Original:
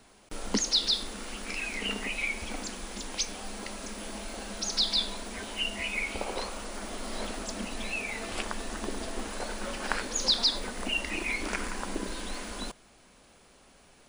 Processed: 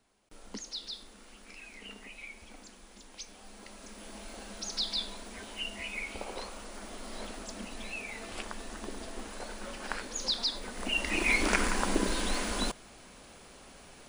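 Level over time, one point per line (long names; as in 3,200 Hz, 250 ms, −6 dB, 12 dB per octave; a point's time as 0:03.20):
0:03.11 −14.5 dB
0:04.29 −6 dB
0:10.60 −6 dB
0:11.33 +5.5 dB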